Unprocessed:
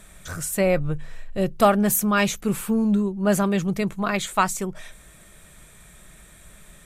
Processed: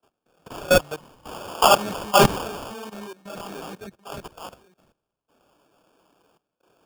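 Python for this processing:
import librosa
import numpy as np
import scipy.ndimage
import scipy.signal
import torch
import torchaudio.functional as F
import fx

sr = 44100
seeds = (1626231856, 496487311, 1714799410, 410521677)

y = fx.dmg_wind(x, sr, seeds[0], corner_hz=540.0, level_db=-30.0)
y = fx.weighting(y, sr, curve='A')
y = fx.chorus_voices(y, sr, voices=4, hz=1.0, base_ms=27, depth_ms=3.9, mix_pct=70)
y = fx.peak_eq(y, sr, hz=1400.0, db=13.5, octaves=2.7, at=(0.68, 3.13))
y = fx.level_steps(y, sr, step_db=16)
y = fx.sample_hold(y, sr, seeds[1], rate_hz=2000.0, jitter_pct=0)
y = fx.band_widen(y, sr, depth_pct=70)
y = F.gain(torch.from_numpy(y), -3.0).numpy()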